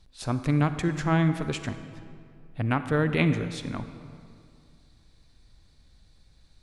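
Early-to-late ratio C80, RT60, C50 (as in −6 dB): 11.5 dB, 2.3 s, 10.5 dB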